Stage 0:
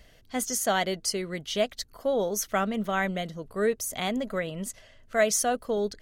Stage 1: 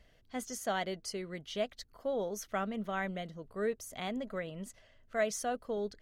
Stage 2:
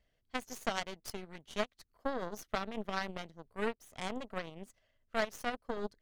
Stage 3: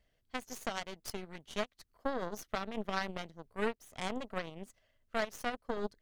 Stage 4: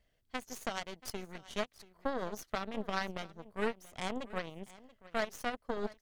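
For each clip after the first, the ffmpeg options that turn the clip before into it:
-af "highshelf=f=5.5k:g=-9,volume=-8dB"
-af "aeval=exprs='0.0891*(cos(1*acos(clip(val(0)/0.0891,-1,1)))-cos(1*PI/2))+0.0282*(cos(3*acos(clip(val(0)/0.0891,-1,1)))-cos(3*PI/2))+0.00501*(cos(4*acos(clip(val(0)/0.0891,-1,1)))-cos(4*PI/2))':c=same,acompressor=threshold=-44dB:ratio=4,volume=13.5dB"
-af "alimiter=limit=-20dB:level=0:latency=1:release=254,volume=1.5dB"
-af "aecho=1:1:682:0.112"

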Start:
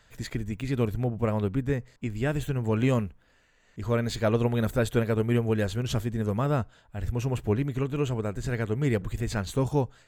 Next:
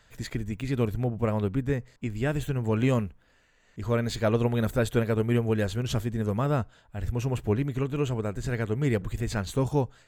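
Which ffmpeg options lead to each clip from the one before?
-af anull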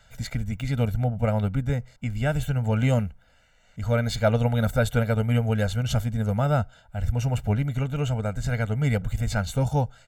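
-af "aecho=1:1:1.4:0.99"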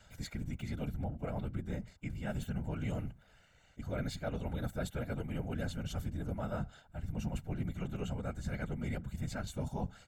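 -af "areverse,acompressor=threshold=-33dB:ratio=4,areverse,afftfilt=real='hypot(re,im)*cos(2*PI*random(0))':imag='hypot(re,im)*sin(2*PI*random(1))':win_size=512:overlap=0.75,volume=2.5dB"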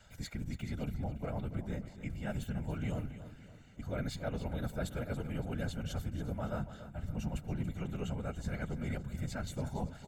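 -af "aecho=1:1:282|564|846|1128|1410:0.237|0.109|0.0502|0.0231|0.0106"

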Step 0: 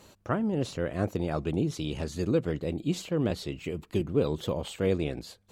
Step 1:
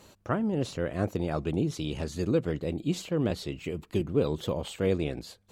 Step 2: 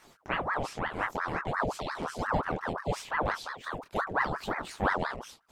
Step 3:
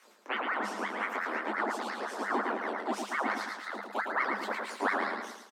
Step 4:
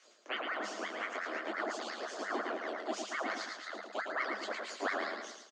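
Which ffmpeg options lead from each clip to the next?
-af anull
-af "flanger=delay=19.5:depth=7.5:speed=0.65,aeval=exprs='val(0)*sin(2*PI*890*n/s+890*0.7/5.7*sin(2*PI*5.7*n/s))':c=same,volume=3dB"
-af "aecho=1:1:110|220|330|440|550:0.562|0.236|0.0992|0.0417|0.0175,afreqshift=200,volume=-2.5dB"
-af "highpass=290,equalizer=f=320:t=q:w=4:g=4,equalizer=f=640:t=q:w=4:g=6,equalizer=f=910:t=q:w=4:g=-8,equalizer=f=3.1k:t=q:w=4:g=6,equalizer=f=4.6k:t=q:w=4:g=7,equalizer=f=6.7k:t=q:w=4:g=10,lowpass=f=7.6k:w=0.5412,lowpass=f=7.6k:w=1.3066,volume=-5dB"

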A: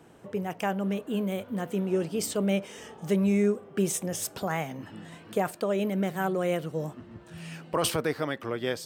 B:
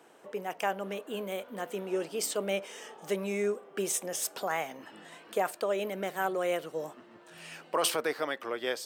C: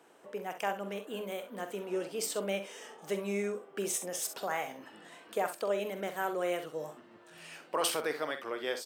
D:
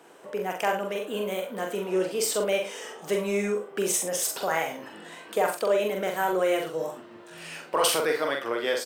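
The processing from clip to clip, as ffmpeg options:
-af "highpass=430"
-af "aecho=1:1:45|65:0.282|0.251,volume=-3dB"
-filter_complex "[0:a]asplit=2[a][b];[b]adelay=43,volume=-4.5dB[c];[a][c]amix=inputs=2:normalize=0,asplit=2[d][e];[e]asoftclip=type=tanh:threshold=-30dB,volume=-9.5dB[f];[d][f]amix=inputs=2:normalize=0,volume=5dB"

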